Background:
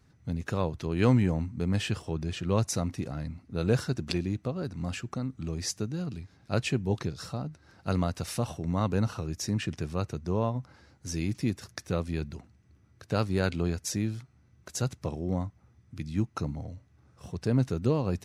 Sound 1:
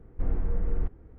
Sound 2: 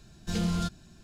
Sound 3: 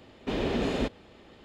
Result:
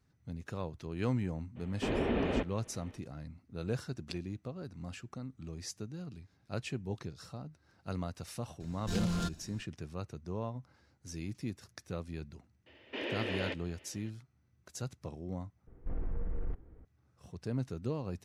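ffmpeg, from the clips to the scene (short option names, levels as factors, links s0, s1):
-filter_complex "[3:a]asplit=2[s0][s1];[0:a]volume=0.316[s2];[s0]lowpass=f=2900:w=0.5412,lowpass=f=2900:w=1.3066[s3];[2:a]asoftclip=type=tanh:threshold=0.0447[s4];[s1]highpass=f=320:w=0.5412,highpass=f=320:w=1.3066,equalizer=f=420:t=q:w=4:g=-6,equalizer=f=750:t=q:w=4:g=-8,equalizer=f=1200:t=q:w=4:g=-9,equalizer=f=1900:t=q:w=4:g=6,equalizer=f=2800:t=q:w=4:g=6,equalizer=f=4000:t=q:w=4:g=-7,lowpass=f=4700:w=0.5412,lowpass=f=4700:w=1.3066[s5];[1:a]acompressor=threshold=0.0631:ratio=6:attack=1.4:release=26:knee=6:detection=peak[s6];[s2]asplit=2[s7][s8];[s7]atrim=end=15.674[s9];[s6]atrim=end=1.18,asetpts=PTS-STARTPTS,volume=0.531[s10];[s8]atrim=start=16.846[s11];[s3]atrim=end=1.44,asetpts=PTS-STARTPTS,volume=0.708,afade=t=in:d=0.02,afade=t=out:st=1.42:d=0.02,adelay=1550[s12];[s4]atrim=end=1.03,asetpts=PTS-STARTPTS,volume=0.891,afade=t=in:d=0.004:c=hsin,afade=t=out:st=1.026:d=0.004:c=hsin,adelay=8600[s13];[s5]atrim=end=1.44,asetpts=PTS-STARTPTS,volume=0.631,afade=t=in:d=0.004:c=hsin,afade=t=out:st=1.436:d=0.004:c=hsin,adelay=12660[s14];[s9][s10]acrossfade=d=0.004:c1=hsin:c2=hsin[s15];[s15][s11]acrossfade=d=0.004:c1=hsin:c2=hsin[s16];[s16][s12][s13][s14]amix=inputs=4:normalize=0"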